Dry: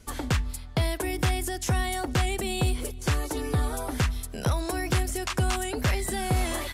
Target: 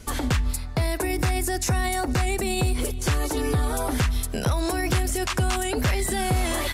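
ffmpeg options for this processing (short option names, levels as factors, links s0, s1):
-filter_complex "[0:a]asettb=1/sr,asplit=3[s0][s1][s2];[s0]atrim=end=0.534[s3];[s1]atrim=start=0.53:end=2.79,asetpts=PTS-STARTPTS,afade=t=in:d=0.004:c=qsin,afade=t=out:st=2.256:d=0.004:c=qsin,bandreject=f=3200:w=5.1[s4];[s2]atrim=start=2.786[s5];[s3][s4]acrossfade=d=0.004:c1=hsin:c2=qsin[s6];[s6][s5]acrossfade=d=0.004:c1=qsin:c2=hsin,alimiter=level_in=1.06:limit=0.0631:level=0:latency=1:release=64,volume=0.944,volume=2.66"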